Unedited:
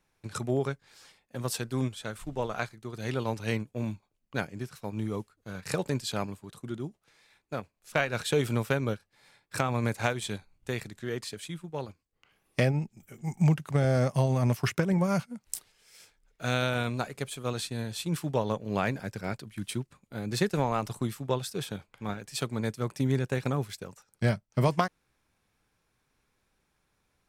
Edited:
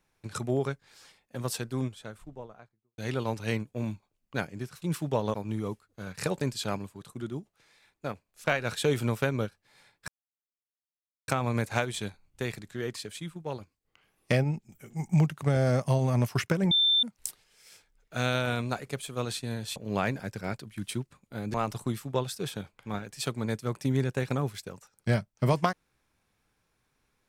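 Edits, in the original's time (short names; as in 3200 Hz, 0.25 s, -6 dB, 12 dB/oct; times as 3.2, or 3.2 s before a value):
1.39–2.98 studio fade out
9.56 insert silence 1.20 s
14.99–15.31 bleep 3560 Hz -20 dBFS
18.04–18.56 move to 4.82
20.34–20.69 cut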